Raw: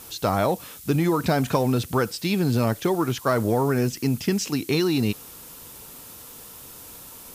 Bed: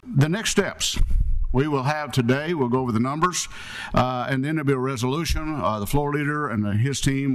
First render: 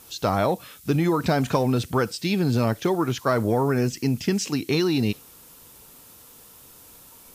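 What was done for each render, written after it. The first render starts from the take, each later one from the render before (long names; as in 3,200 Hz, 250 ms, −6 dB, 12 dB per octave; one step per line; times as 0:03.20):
noise reduction from a noise print 6 dB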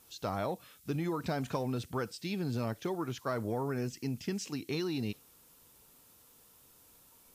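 level −12.5 dB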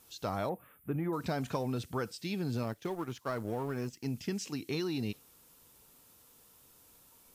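0:00.49–0:01.13: Butterworth band-reject 5,200 Hz, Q 0.54
0:02.63–0:04.06: mu-law and A-law mismatch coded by A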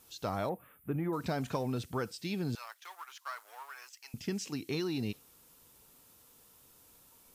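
0:02.55–0:04.14: high-pass filter 1,000 Hz 24 dB per octave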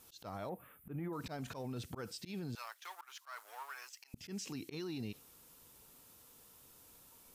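volume swells 139 ms
brickwall limiter −34.5 dBFS, peak gain reduction 10.5 dB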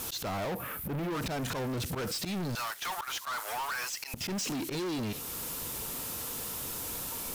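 in parallel at +2.5 dB: downward compressor, threshold −54 dBFS, peak gain reduction 14.5 dB
on the sum: leveller curve on the samples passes 5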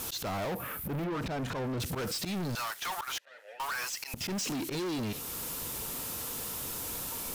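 0:01.04–0:01.80: low-pass filter 2,700 Hz 6 dB per octave
0:03.18–0:03.60: formant filter e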